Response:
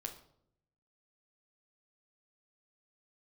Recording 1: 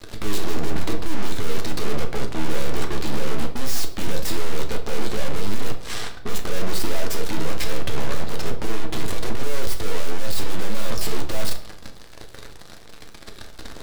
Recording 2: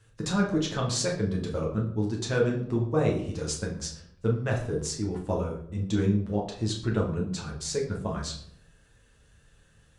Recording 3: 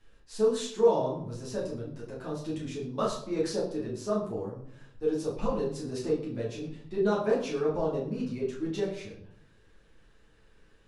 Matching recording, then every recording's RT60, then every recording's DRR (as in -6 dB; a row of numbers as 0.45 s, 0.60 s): 1; 0.70 s, 0.70 s, 0.70 s; 3.5 dB, -2.0 dB, -7.0 dB